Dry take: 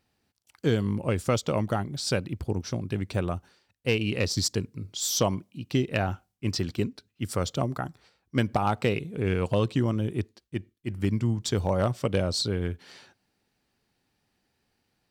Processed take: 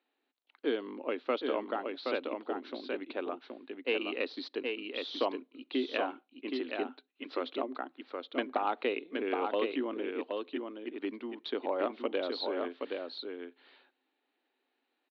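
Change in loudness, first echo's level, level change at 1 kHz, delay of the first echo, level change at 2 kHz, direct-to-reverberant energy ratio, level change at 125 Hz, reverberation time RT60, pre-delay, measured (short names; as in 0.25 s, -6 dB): -7.5 dB, -4.5 dB, -3.5 dB, 0.772 s, -3.5 dB, none, under -35 dB, none, none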